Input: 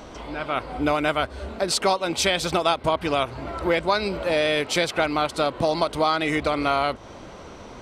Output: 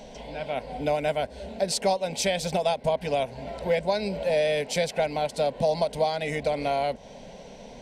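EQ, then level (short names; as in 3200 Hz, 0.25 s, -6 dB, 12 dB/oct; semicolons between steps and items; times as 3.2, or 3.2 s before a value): high shelf 7700 Hz -4.5 dB; fixed phaser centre 330 Hz, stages 6; dynamic EQ 3400 Hz, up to -6 dB, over -42 dBFS, Q 1.5; 0.0 dB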